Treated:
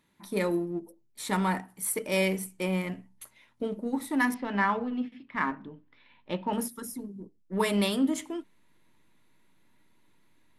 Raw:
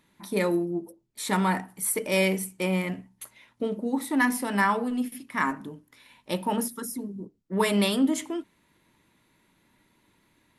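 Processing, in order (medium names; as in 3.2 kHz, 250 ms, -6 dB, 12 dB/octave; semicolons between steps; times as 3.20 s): 4.34–6.53 s: low-pass 3.6 kHz 24 dB/octave; in parallel at -10 dB: hysteresis with a dead band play -25 dBFS; on the sum: trim -5 dB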